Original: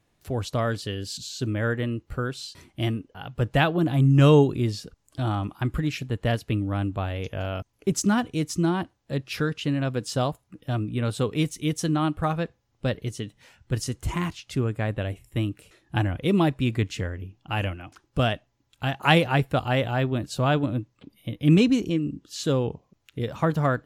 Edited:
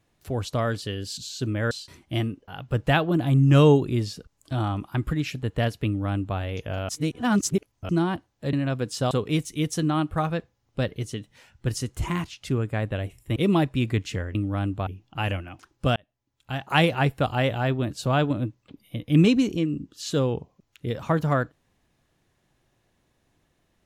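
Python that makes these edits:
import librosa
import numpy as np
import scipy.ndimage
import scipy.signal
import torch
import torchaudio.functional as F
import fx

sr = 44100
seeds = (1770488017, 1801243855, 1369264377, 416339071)

y = fx.edit(x, sr, fx.cut(start_s=1.71, length_s=0.67),
    fx.duplicate(start_s=6.53, length_s=0.52, to_s=17.2),
    fx.reverse_span(start_s=7.56, length_s=1.0),
    fx.cut(start_s=9.2, length_s=0.48),
    fx.cut(start_s=10.26, length_s=0.91),
    fx.cut(start_s=15.42, length_s=0.79),
    fx.fade_in_span(start_s=18.29, length_s=1.3, curve='qsin'), tone=tone)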